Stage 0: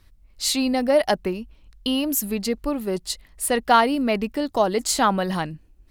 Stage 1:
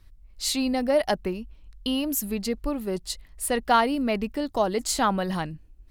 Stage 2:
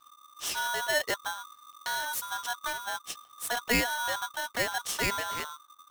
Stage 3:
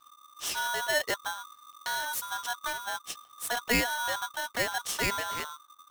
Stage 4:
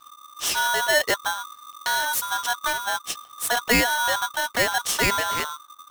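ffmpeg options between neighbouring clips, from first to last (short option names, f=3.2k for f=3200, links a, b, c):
-af "lowshelf=f=89:g=8,volume=-4dB"
-af "aeval=exprs='val(0)*sgn(sin(2*PI*1200*n/s))':c=same,volume=-6.5dB"
-af anull
-af "asoftclip=type=tanh:threshold=-20dB,volume=9dB"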